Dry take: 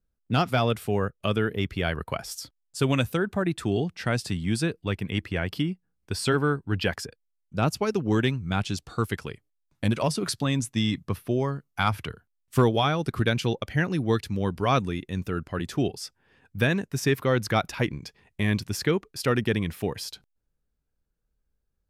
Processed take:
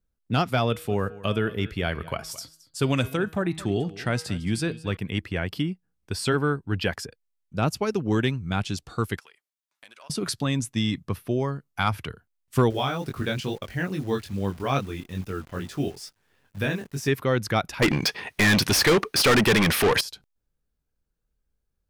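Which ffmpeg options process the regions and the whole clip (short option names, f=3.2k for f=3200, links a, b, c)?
-filter_complex "[0:a]asettb=1/sr,asplit=3[a][b][c];[a]atrim=end=0.674[d];[b]atrim=start=0.67:end=4.97,asetpts=PTS-STARTPTS,afade=t=in:d=0.004:c=qsin,afade=t=out:st=4.296:d=0.004:c=qsin,bandreject=f=159.6:t=h:w=4,bandreject=f=319.2:t=h:w=4,bandreject=f=478.8:t=h:w=4,bandreject=f=638.4:t=h:w=4,bandreject=f=798:t=h:w=4,bandreject=f=957.6:t=h:w=4,bandreject=f=1.1172k:t=h:w=4,bandreject=f=1.2768k:t=h:w=4,bandreject=f=1.4364k:t=h:w=4,bandreject=f=1.596k:t=h:w=4,bandreject=f=1.7556k:t=h:w=4,bandreject=f=1.9152k:t=h:w=4,bandreject=f=2.0748k:t=h:w=4,bandreject=f=2.2344k:t=h:w=4,bandreject=f=2.394k:t=h:w=4,bandreject=f=2.5536k:t=h:w=4,bandreject=f=2.7132k:t=h:w=4,bandreject=f=2.8728k:t=h:w=4,bandreject=f=3.0324k:t=h:w=4,bandreject=f=3.192k:t=h:w=4,bandreject=f=3.3516k:t=h:w=4,bandreject=f=3.5112k:t=h:w=4,bandreject=f=3.6708k:t=h:w=4,bandreject=f=3.8304k:t=h:w=4,bandreject=f=3.99k:t=h:w=4,bandreject=f=4.1496k:t=h:w=4,bandreject=f=4.3092k:t=h:w=4,bandreject=f=4.4688k:t=h:w=4,bandreject=f=4.6284k:t=h:w=4,bandreject=f=4.788k:t=h:w=4,bandreject=f=4.9476k:t=h:w=4,aecho=1:1:220:0.119,atrim=end_sample=189630[e];[c]atrim=start=4.966[f];[d][e]acrossfade=d=0.004:c1=hsin:c2=qsin[g];[g][f]acrossfade=d=0.004:c1=qsin:c2=hsin,asettb=1/sr,asplit=3[h][i][j];[h]atrim=end=9.194[k];[i]atrim=start=9.19:end=10.1,asetpts=PTS-STARTPTS,afade=t=in:d=0.004:c=qsin,afade=t=out:st=0.906:d=0.004:c=qsin,aeval=exprs='if(lt(val(0),0),0.708*val(0),val(0))':c=same,highpass=1k,acompressor=threshold=-52dB:ratio=2.5:attack=3.2:release=140:knee=1:detection=peak[l];[j]atrim=start=10.096[m];[k][l]acrossfade=d=0.004:c1=hsin:c2=qsin[n];[n][m]acrossfade=d=0.004:c1=qsin:c2=hsin,asettb=1/sr,asplit=3[o][p][q];[o]atrim=end=12.704[r];[p]atrim=start=12.7:end=17.08,asetpts=PTS-STARTPTS,afade=t=in:d=0.004:c=qsin,afade=t=out:st=4.376:d=0.004:c=qsin,flanger=delay=20:depth=3.2:speed=2.3,acrusher=bits=9:dc=4:mix=0:aa=0.000001[s];[q]atrim=start=17.076[t];[r][s]acrossfade=d=0.004:c1=hsin:c2=qsin[u];[u][t]acrossfade=d=0.004:c1=qsin:c2=hsin,asettb=1/sr,asplit=3[v][w][x];[v]atrim=end=17.824[y];[w]atrim=start=17.82:end=20.01,asetpts=PTS-STARTPTS,afade=t=in:d=0.004:c=qsin,afade=t=out:st=2.186:d=0.004:c=qsin,bandreject=f=7.3k:w=5.6,asplit=2[z][aa];[aa]highpass=f=720:p=1,volume=33dB,asoftclip=type=tanh:threshold=-11.5dB[ab];[z][ab]amix=inputs=2:normalize=0,lowpass=f=6.7k:p=1,volume=-6dB[ac];[x]atrim=start=20.006[ad];[y][ac]acrossfade=d=0.004:c1=hsin:c2=qsin[ae];[ae][ad]acrossfade=d=0.004:c1=qsin:c2=hsin"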